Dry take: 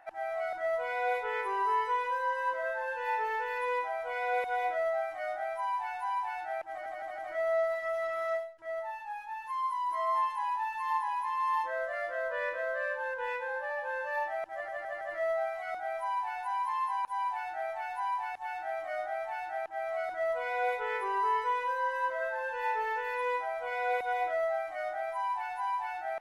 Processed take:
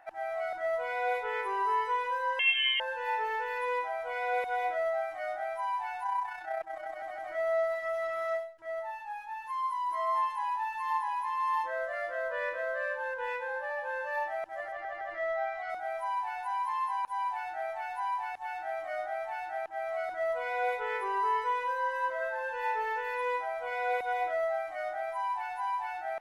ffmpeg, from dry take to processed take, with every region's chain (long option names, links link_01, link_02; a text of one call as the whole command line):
ffmpeg -i in.wav -filter_complex "[0:a]asettb=1/sr,asplit=3[link_01][link_02][link_03];[link_01]atrim=end=2.394[link_04];[link_02]atrim=start=2.39:end=2.8,asetpts=PTS-STARTPTS,afade=type=in:duration=0.004:curve=qsin,afade=type=out:start_time=0.406:duration=0.004:curve=qsin,acontrast=38,lowpass=frequency=3100:width_type=q:width=0.5098,lowpass=frequency=3100:width_type=q:width=0.6013,lowpass=frequency=3100:width_type=q:width=0.9,lowpass=frequency=3100:width_type=q:width=2.563,afreqshift=-3700[link_05];[link_03]atrim=start=2.796[link_06];[link_04][link_05]acrossfade=duration=0.004:curve1=hsin:curve2=qsin[link_07];[link_07][link_06]acrossfade=duration=0.004:curve1=qsin:curve2=hsin,asettb=1/sr,asplit=3[link_08][link_09][link_10];[link_08]atrim=end=6.034[link_11];[link_09]atrim=start=6.03:end=6.97,asetpts=PTS-STARTPTS,afade=type=in:duration=0.004:curve=qsin,afade=type=out:start_time=0.936:duration=0.004:curve=qsin,aecho=1:1:6.2:0.55,atrim=end_sample=41454,tremolo=f=31:d=0.462[link_12];[link_10]atrim=start=6.966[link_13];[link_11][link_12]acrossfade=duration=0.004:curve1=hsin:curve2=qsin[link_14];[link_14][link_13]acrossfade=duration=0.004:curve1=qsin:curve2=hsin,asettb=1/sr,asplit=3[link_15][link_16][link_17];[link_15]atrim=end=14.724[link_18];[link_16]atrim=start=14.72:end=15.7,asetpts=PTS-STARTPTS,afade=type=in:duration=0.004:curve=qsin,afade=type=out:start_time=0.976:duration=0.004:curve=qsin,lowpass=5200,aecho=1:1:2.5:0.45,atrim=end_sample=43218[link_19];[link_17]atrim=start=15.696[link_20];[link_18][link_19]acrossfade=duration=0.004:curve1=hsin:curve2=qsin[link_21];[link_21][link_20]acrossfade=duration=0.004:curve1=qsin:curve2=hsin" out.wav